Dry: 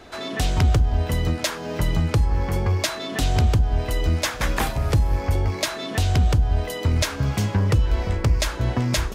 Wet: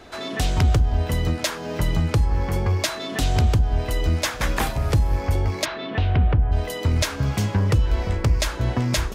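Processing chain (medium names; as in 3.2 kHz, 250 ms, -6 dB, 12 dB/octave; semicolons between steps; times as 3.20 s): 5.64–6.51 s: low-pass 4.1 kHz -> 2.2 kHz 24 dB/octave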